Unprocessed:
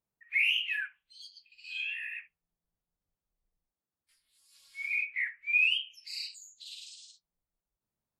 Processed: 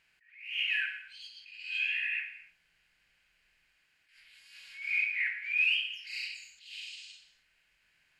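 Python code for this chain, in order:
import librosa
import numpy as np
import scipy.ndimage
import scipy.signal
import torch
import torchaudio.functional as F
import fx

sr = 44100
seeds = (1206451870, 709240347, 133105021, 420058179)

y = fx.bin_compress(x, sr, power=0.6)
y = fx.high_shelf(y, sr, hz=3700.0, db=-11.5)
y = fx.rev_gated(y, sr, seeds[0], gate_ms=300, shape='falling', drr_db=4.0)
y = fx.attack_slew(y, sr, db_per_s=100.0)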